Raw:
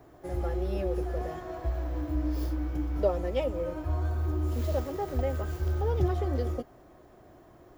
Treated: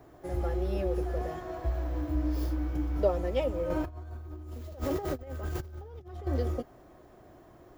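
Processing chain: 3.70–6.27 s: compressor with a negative ratio -35 dBFS, ratio -0.5

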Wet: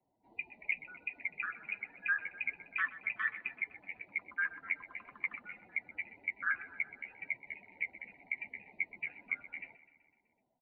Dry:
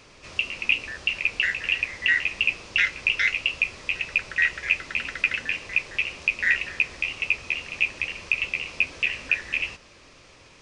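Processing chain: expander on every frequency bin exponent 2; mistuned SSB -300 Hz 480–2700 Hz; feedback delay 126 ms, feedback 60%, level -17 dB; trim -8 dB

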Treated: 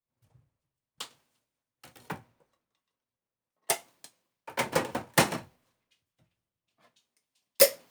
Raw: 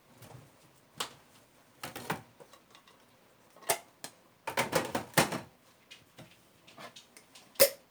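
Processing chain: three bands expanded up and down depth 100%; trim -5.5 dB

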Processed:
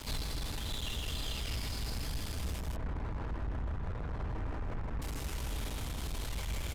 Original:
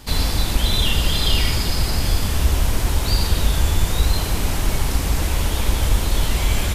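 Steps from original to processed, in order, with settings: de-hum 85.44 Hz, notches 31; vibrato 2.2 Hz 22 cents; comb of notches 180 Hz; 2.60–5.02 s: low-pass 1.8 kHz 24 dB/octave; crossover distortion -42.5 dBFS; upward compressor, threshold -31 dBFS; saturation -25.5 dBFS, distortion -6 dB; delay 159 ms -3 dB; peak limiter -29 dBFS, peak gain reduction 8 dB; loudspeaker Doppler distortion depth 0.13 ms; trim -2.5 dB

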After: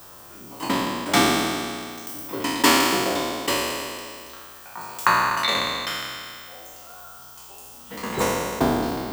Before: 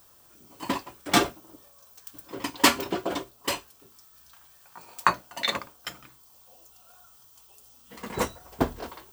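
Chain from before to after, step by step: spectral sustain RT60 1.61 s; three bands compressed up and down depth 40%; trim +1 dB

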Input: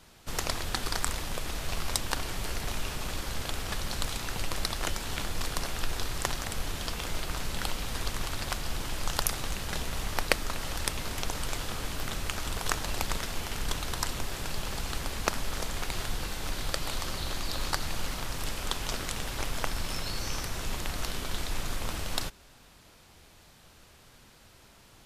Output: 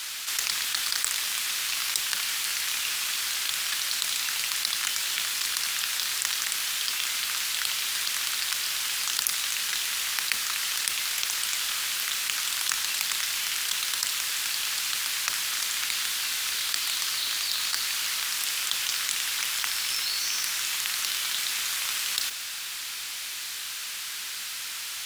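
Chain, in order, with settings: Bessel high-pass 2.1 kHz, order 4; modulation noise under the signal 14 dB; level flattener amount 70%; trim +1 dB

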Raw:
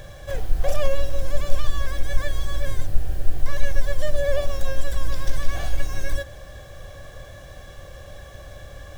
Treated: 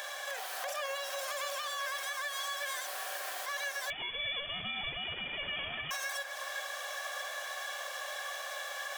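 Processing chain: high-pass 780 Hz 24 dB/octave; compression, threshold -41 dBFS, peak gain reduction 11 dB; peak limiter -37 dBFS, peak gain reduction 9 dB; echo whose repeats swap between lows and highs 517 ms, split 2.3 kHz, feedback 54%, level -7 dB; 3.90–5.91 s: frequency inversion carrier 4 kHz; trim +8.5 dB; AAC 192 kbps 48 kHz

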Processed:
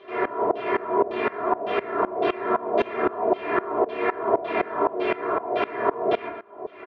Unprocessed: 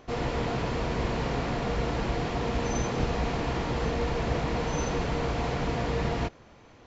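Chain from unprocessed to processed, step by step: high-pass 380 Hz 12 dB/octave; comb 2.9 ms, depth 85%; upward compressor, threshold -31 dBFS; LFO low-pass saw down 1.8 Hz 580–3500 Hz; distance through air 140 m; feedback delay 114 ms, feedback 34%, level -18 dB; reverberation RT60 0.30 s, pre-delay 3 ms, DRR -9 dB; sawtooth tremolo in dB swelling 3.9 Hz, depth 21 dB

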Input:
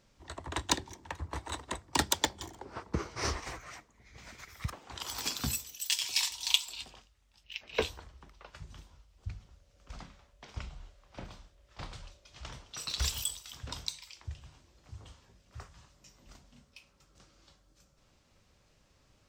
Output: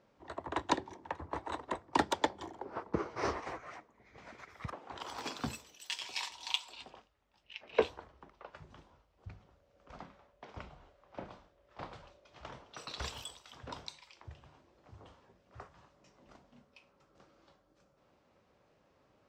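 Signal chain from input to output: band-pass filter 580 Hz, Q 0.64; trim +4 dB

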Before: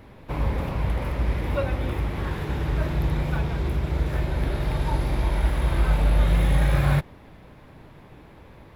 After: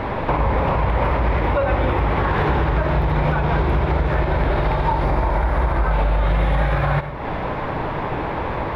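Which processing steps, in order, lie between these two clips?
FFT filter 240 Hz 0 dB, 920 Hz +10 dB, 3.3 kHz 0 dB, 4.9 kHz -5 dB, 8.3 kHz -16 dB; reverberation RT60 0.35 s, pre-delay 55 ms, DRR 13.5 dB; compression 12:1, threshold -33 dBFS, peak gain reduction 20 dB; 5.04–5.91 s: peaking EQ 3.2 kHz -7 dB 0.91 oct; loudness maximiser +28.5 dB; trim -9 dB

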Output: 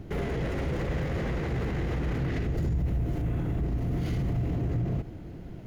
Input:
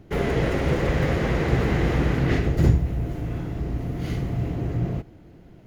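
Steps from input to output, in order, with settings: 3.22–3.66 s: peaking EQ 5.1 kHz -6 dB 0.77 oct; peak limiter -29 dBFS, peak gain reduction 22.5 dB; bass shelf 210 Hz +5 dB; trim +3.5 dB

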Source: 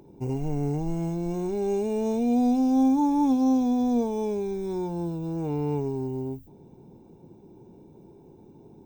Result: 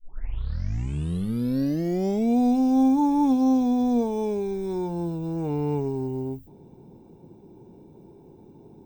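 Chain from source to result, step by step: tape start-up on the opening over 2.35 s; peaking EQ 6.4 kHz -4 dB 0.26 oct; trim +1.5 dB

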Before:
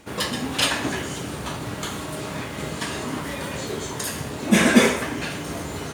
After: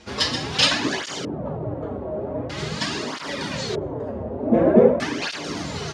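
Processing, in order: LFO low-pass square 0.4 Hz 590–5100 Hz; cancelling through-zero flanger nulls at 0.47 Hz, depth 7.2 ms; trim +3.5 dB

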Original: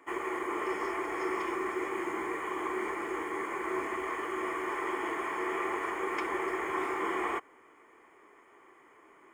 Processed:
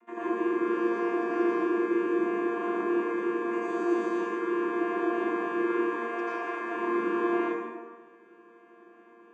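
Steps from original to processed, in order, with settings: vocoder on a held chord bare fifth, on A#3; 3.53–4.12 s: resonant high shelf 3.4 kHz +8.5 dB, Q 1.5; 5.75–6.60 s: high-pass 330 Hz -> 850 Hz 12 dB/octave; plate-style reverb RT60 1.4 s, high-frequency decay 0.7×, pre-delay 75 ms, DRR -10 dB; trim -2 dB

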